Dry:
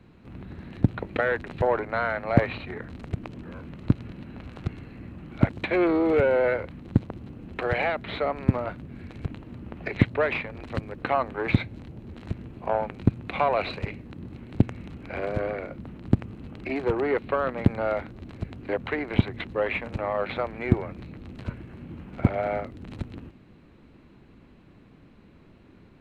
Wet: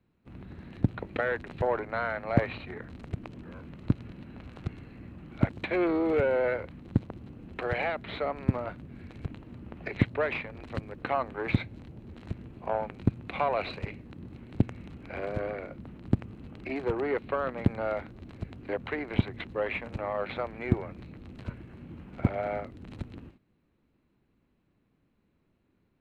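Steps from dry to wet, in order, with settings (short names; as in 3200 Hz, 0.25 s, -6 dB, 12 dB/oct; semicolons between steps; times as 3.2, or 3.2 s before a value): gate -47 dBFS, range -14 dB; gain -4.5 dB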